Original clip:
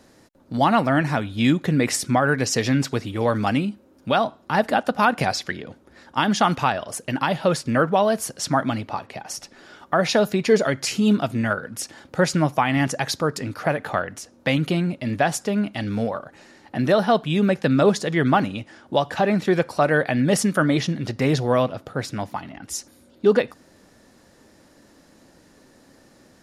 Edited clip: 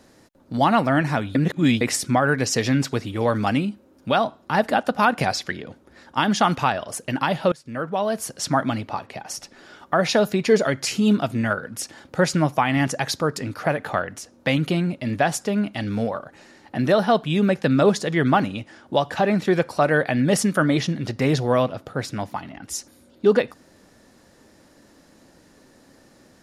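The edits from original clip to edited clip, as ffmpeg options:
ffmpeg -i in.wav -filter_complex "[0:a]asplit=4[link_01][link_02][link_03][link_04];[link_01]atrim=end=1.352[link_05];[link_02]atrim=start=1.348:end=1.812,asetpts=PTS-STARTPTS,areverse[link_06];[link_03]atrim=start=1.808:end=7.52,asetpts=PTS-STARTPTS,afade=type=out:start_time=5.708:duration=0.004:curve=hsin:silence=0.0668344[link_07];[link_04]atrim=start=7.52,asetpts=PTS-STARTPTS,afade=type=in:duration=0.9:silence=0.0668344[link_08];[link_05][link_06]acrossfade=duration=0.004:curve1=hsin:curve2=hsin[link_09];[link_07][link_08]concat=n=2:v=0:a=1[link_10];[link_09][link_10]acrossfade=duration=0.004:curve1=hsin:curve2=hsin" out.wav

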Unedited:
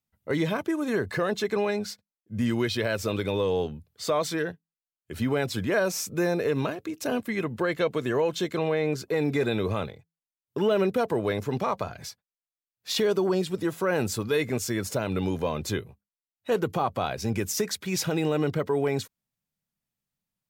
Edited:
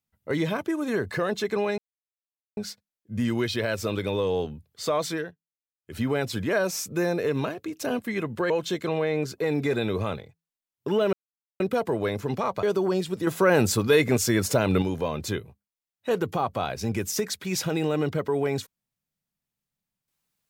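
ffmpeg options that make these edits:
ffmpeg -i in.wav -filter_complex "[0:a]asplit=9[link_01][link_02][link_03][link_04][link_05][link_06][link_07][link_08][link_09];[link_01]atrim=end=1.78,asetpts=PTS-STARTPTS,afade=type=out:start_time=1.776:duration=0.004:curve=hsin,apad=pad_dur=0.79[link_10];[link_02]atrim=start=1.78:end=4.55,asetpts=PTS-STARTPTS,afade=type=in:duration=0.004:curve=hsin,afade=type=out:start_time=2.56:duration=0.21:silence=0.237137[link_11];[link_03]atrim=start=4.55:end=4.99,asetpts=PTS-STARTPTS,volume=-12.5dB[link_12];[link_04]atrim=start=4.99:end=7.712,asetpts=PTS-STARTPTS,afade=type=in:duration=0.21:silence=0.237137[link_13];[link_05]atrim=start=8.198:end=10.83,asetpts=PTS-STARTPTS,afade=type=out:start_time=2.628:duration=0.004:curve=hsin,apad=pad_dur=0.47[link_14];[link_06]atrim=start=10.83:end=11.862,asetpts=PTS-STARTPTS,afade=type=in:duration=0.004:curve=hsin[link_15];[link_07]atrim=start=13.038:end=13.682[link_16];[link_08]atrim=start=13.678:end=15.232,asetpts=PTS-STARTPTS,volume=6dB[link_17];[link_09]atrim=start=15.228[link_18];[link_10][link_11][link_12][link_13]concat=n=4:v=0:a=1[link_19];[link_14][link_15]concat=n=2:v=0:a=1[link_20];[link_19][link_20]acrossfade=duration=0.004:curve1=hsin:curve2=hsin[link_21];[link_21][link_16]acrossfade=duration=0.004:curve1=hsin:curve2=hsin[link_22];[link_22][link_17]acrossfade=duration=0.004:curve1=hsin:curve2=hsin[link_23];[link_23][link_18]acrossfade=duration=0.004:curve1=hsin:curve2=hsin" out.wav

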